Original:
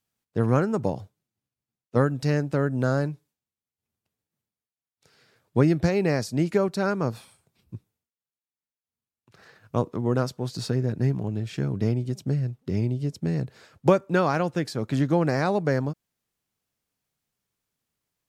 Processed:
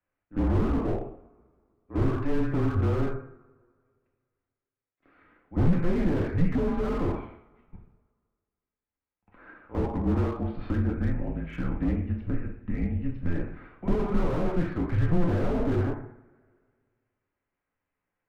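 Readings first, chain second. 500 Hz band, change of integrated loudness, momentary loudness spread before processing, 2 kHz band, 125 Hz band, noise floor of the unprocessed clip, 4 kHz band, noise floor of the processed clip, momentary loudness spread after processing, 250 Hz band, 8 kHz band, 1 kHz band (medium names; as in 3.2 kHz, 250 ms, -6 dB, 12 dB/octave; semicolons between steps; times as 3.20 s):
-6.0 dB, -3.0 dB, 10 LU, -7.0 dB, -2.5 dB, under -85 dBFS, under -10 dB, under -85 dBFS, 9 LU, -1.5 dB, under -15 dB, -6.5 dB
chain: pre-echo 53 ms -22 dB; mistuned SSB -160 Hz 190–2500 Hz; two-slope reverb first 0.57 s, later 2 s, from -27 dB, DRR -1 dB; slew-rate limiter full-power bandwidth 20 Hz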